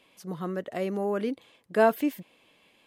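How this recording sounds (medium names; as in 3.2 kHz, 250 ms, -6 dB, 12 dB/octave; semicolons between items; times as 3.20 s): noise floor -64 dBFS; spectral tilt -2.5 dB/octave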